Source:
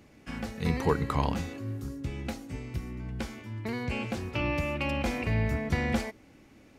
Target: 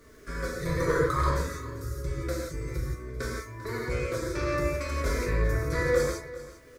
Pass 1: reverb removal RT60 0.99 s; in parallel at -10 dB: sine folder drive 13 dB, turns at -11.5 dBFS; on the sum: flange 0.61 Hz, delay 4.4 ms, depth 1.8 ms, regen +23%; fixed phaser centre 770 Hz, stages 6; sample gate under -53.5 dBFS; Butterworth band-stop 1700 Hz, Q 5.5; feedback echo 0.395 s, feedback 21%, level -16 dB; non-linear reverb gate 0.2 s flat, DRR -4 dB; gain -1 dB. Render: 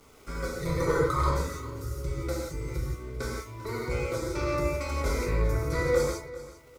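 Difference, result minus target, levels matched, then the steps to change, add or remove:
sample gate: distortion +9 dB; 2000 Hz band -2.5 dB
change: sample gate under -60.5 dBFS; change: Butterworth band-stop 830 Hz, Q 5.5

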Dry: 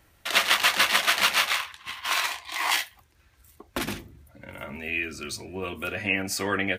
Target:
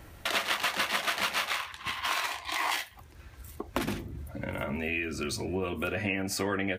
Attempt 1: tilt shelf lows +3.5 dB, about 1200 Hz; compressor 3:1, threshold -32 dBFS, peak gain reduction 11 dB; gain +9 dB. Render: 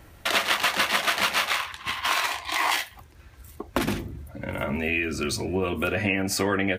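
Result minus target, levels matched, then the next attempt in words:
compressor: peak gain reduction -6 dB
tilt shelf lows +3.5 dB, about 1200 Hz; compressor 3:1, threshold -41 dBFS, peak gain reduction 17 dB; gain +9 dB

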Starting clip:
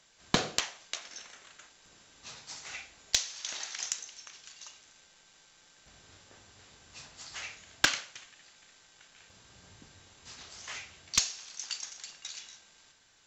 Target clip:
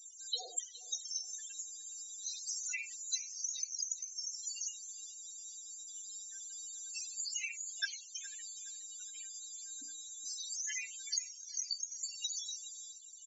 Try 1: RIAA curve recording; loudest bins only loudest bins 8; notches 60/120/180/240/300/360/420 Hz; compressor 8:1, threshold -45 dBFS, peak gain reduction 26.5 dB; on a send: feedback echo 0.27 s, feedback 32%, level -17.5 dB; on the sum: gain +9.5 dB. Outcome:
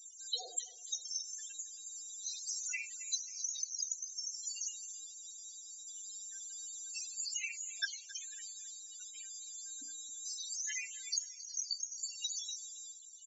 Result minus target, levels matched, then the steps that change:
echo 0.147 s early
change: feedback echo 0.417 s, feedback 32%, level -17.5 dB

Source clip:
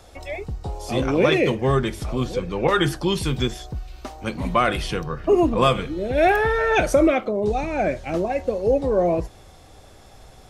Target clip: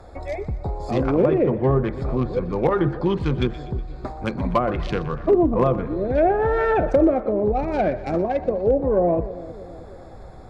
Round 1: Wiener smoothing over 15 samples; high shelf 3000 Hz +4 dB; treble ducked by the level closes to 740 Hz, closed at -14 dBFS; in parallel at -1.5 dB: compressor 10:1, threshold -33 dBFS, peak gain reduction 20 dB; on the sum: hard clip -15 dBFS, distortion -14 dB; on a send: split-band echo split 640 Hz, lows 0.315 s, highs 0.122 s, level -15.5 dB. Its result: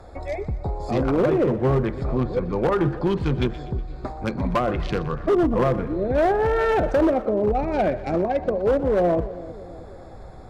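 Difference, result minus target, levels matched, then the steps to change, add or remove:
hard clip: distortion +18 dB
change: hard clip -9 dBFS, distortion -32 dB

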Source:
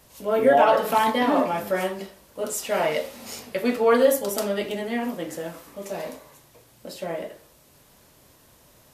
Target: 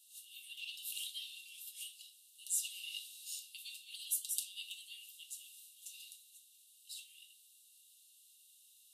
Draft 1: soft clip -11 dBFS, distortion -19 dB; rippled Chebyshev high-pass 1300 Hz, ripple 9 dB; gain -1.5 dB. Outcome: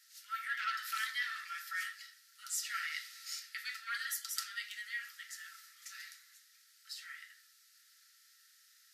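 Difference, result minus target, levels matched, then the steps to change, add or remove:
2000 Hz band +12.5 dB
change: rippled Chebyshev high-pass 2700 Hz, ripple 9 dB

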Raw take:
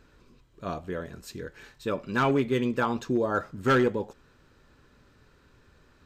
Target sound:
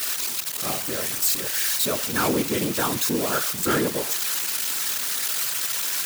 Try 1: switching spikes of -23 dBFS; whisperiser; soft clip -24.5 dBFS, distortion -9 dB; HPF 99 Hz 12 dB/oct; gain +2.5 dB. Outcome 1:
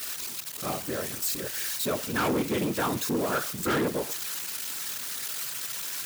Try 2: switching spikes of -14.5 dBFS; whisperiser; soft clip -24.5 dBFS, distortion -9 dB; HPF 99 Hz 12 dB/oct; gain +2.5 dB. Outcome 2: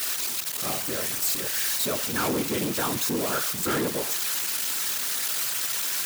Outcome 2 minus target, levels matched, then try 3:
soft clip: distortion +7 dB
switching spikes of -14.5 dBFS; whisperiser; soft clip -17.5 dBFS, distortion -16 dB; HPF 99 Hz 12 dB/oct; gain +2.5 dB

